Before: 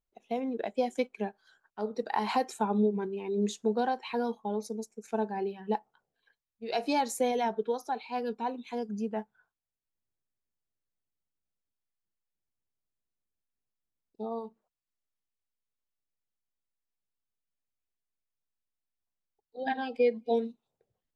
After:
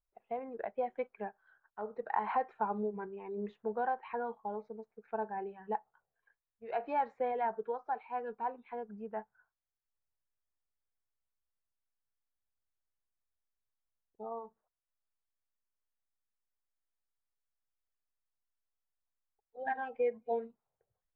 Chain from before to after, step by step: low-pass 1.8 kHz 24 dB/octave; peaking EQ 260 Hz -15 dB 1.5 oct

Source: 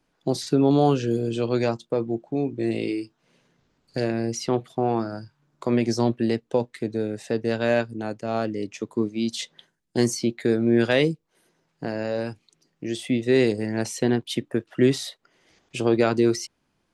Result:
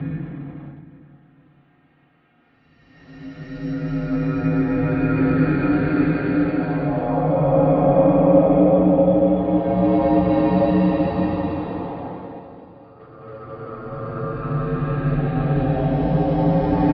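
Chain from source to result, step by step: slices played last to first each 90 ms, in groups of 7; Paulstretch 6×, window 0.50 s, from 3.18 s; in parallel at -7 dB: small samples zeroed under -39 dBFS; on the sum: feedback delay 455 ms, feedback 48%, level -15.5 dB; FDN reverb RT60 0.41 s, low-frequency decay 1.5×, high-frequency decay 0.3×, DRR -9.5 dB; mistuned SSB -190 Hz 400–3400 Hz; trim -3.5 dB

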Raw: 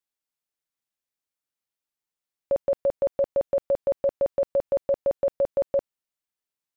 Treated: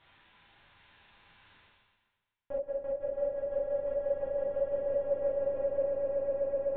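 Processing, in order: low-pass that closes with the level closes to 580 Hz, closed at -19.5 dBFS; dynamic bell 730 Hz, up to -6 dB, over -36 dBFS, Q 0.98; high-pass 450 Hz 6 dB/octave; LPC vocoder at 8 kHz pitch kept; distance through air 140 m; band-stop 710 Hz, Q 15; echo with a slow build-up 126 ms, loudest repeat 8, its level -7 dB; gated-style reverb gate 90 ms flat, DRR -7.5 dB; reverse; upward compressor, threshold -26 dBFS; reverse; trim -7.5 dB

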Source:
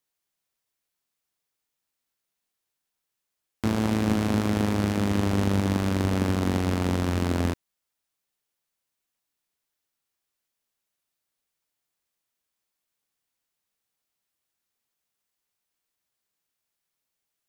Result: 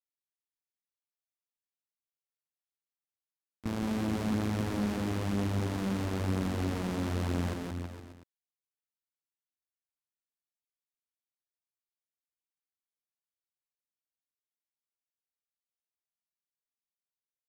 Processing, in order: gate with hold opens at -13 dBFS; peak limiter -20.5 dBFS, peak gain reduction 10.5 dB; on a send: bouncing-ball echo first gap 170 ms, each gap 0.9×, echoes 5; on the sum: trim -2.5 dB

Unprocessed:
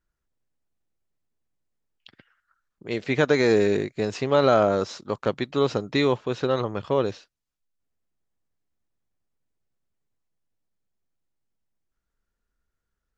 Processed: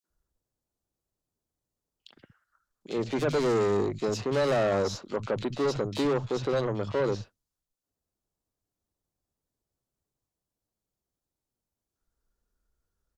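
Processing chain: peaking EQ 2 kHz -8 dB 1.3 oct; valve stage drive 26 dB, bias 0.4; three bands offset in time highs, mids, lows 40/100 ms, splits 180/2600 Hz; trim +4 dB

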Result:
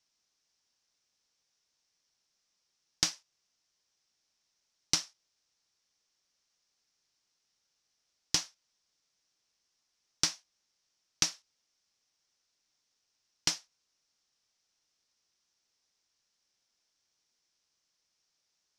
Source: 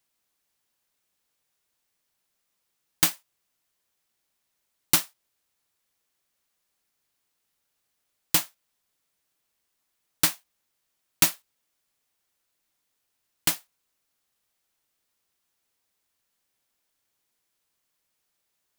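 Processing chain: resonant low-pass 5.6 kHz, resonance Q 4.5; compression 6:1, threshold -20 dBFS, peak gain reduction 9.5 dB; trim -4.5 dB

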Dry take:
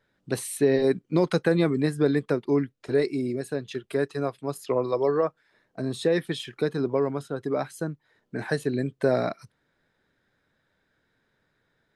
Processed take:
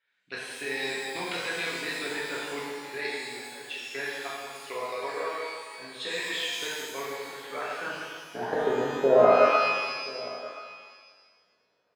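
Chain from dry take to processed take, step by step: band-pass sweep 2.6 kHz -> 570 Hz, 7.28–8.71 s; level held to a coarse grid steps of 15 dB; on a send: delay 1027 ms -19.5 dB; on the sum: pitch-shifted reverb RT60 1.6 s, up +12 st, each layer -8 dB, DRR -7 dB; trim +7.5 dB

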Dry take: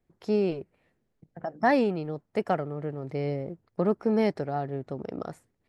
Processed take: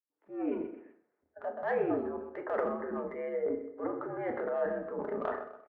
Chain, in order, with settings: fade-in on the opening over 0.64 s; spectral noise reduction 15 dB; reverse; compression 8:1, threshold -37 dBFS, peak gain reduction 19 dB; reverse; mistuned SSB -74 Hz 410–2100 Hz; in parallel at -7 dB: saturation -36.5 dBFS, distortion -16 dB; on the sum: feedback delay 127 ms, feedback 36%, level -18 dB; transient shaper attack -6 dB, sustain +9 dB; doubling 37 ms -13 dB; FDN reverb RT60 0.51 s, low-frequency decay 0.9×, high-frequency decay 0.7×, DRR 4 dB; trim +7 dB

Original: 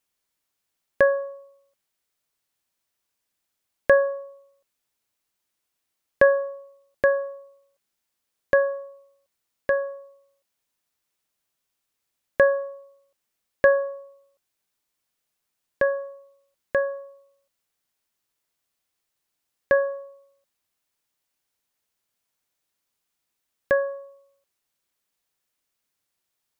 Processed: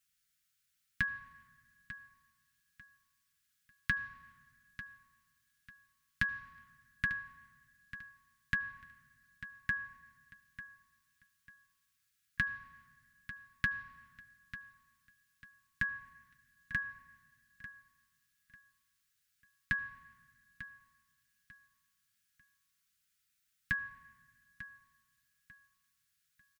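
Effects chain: compression 6:1, threshold -25 dBFS, peak gain reduction 12.5 dB; elliptic band-stop 210–1400 Hz, stop band 40 dB; comb of notches 200 Hz; feedback delay 895 ms, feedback 28%, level -14 dB; reverberation RT60 1.9 s, pre-delay 68 ms, DRR 17.5 dB; trim +2 dB

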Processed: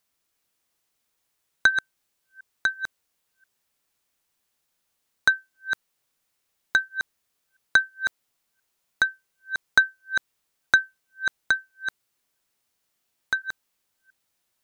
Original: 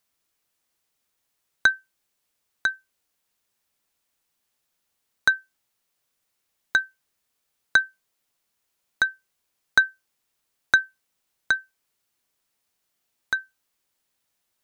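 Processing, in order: chunks repeated in reverse 344 ms, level -7.5 dB

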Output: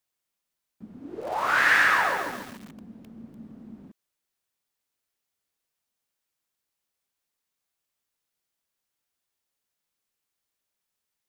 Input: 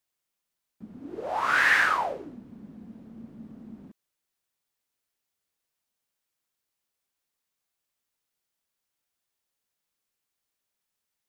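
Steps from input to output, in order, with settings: 1.06–3.38 s: bit-crushed delay 139 ms, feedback 55%, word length 7-bit, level -3 dB

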